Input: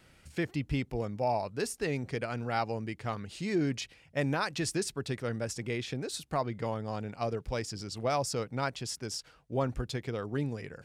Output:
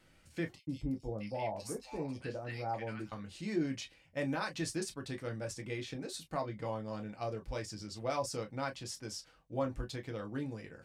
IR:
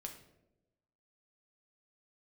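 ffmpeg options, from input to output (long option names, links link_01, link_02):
-filter_complex "[0:a]asettb=1/sr,asplit=3[link_01][link_02][link_03];[link_01]atrim=end=0.554[link_04];[link_02]atrim=start=0.55:end=3.12,asetpts=PTS-STARTPTS,afade=type=in:duration=0.004:curve=qsin,afade=type=out:start_time=2.566:duration=0.004:curve=qsin,acrossover=split=1100|3700[link_05][link_06][link_07];[link_05]adelay=120[link_08];[link_06]adelay=650[link_09];[link_08][link_09][link_07]amix=inputs=3:normalize=0,atrim=end_sample=113337[link_10];[link_03]atrim=start=3.116[link_11];[link_04][link_10]acrossfade=duration=0.004:curve1=hsin:curve2=qsin[link_12];[link_12][link_11]acrossfade=duration=0.004:curve1=qsin:curve2=hsin[link_13];[1:a]atrim=start_sample=2205,atrim=end_sample=3528,asetrate=79380,aresample=44100[link_14];[link_13][link_14]afir=irnorm=-1:irlink=0,volume=3.5dB"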